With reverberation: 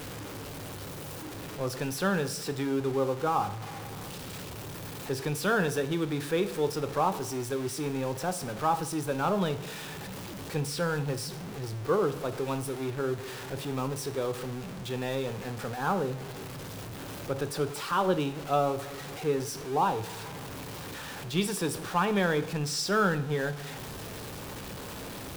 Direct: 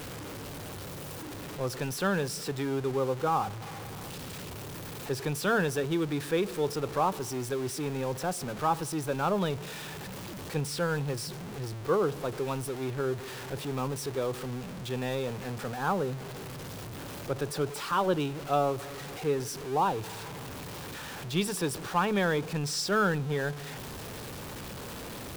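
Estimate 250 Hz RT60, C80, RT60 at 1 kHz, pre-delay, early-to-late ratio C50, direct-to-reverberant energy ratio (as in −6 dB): 0.60 s, 18.0 dB, 0.60 s, 4 ms, 14.5 dB, 10.0 dB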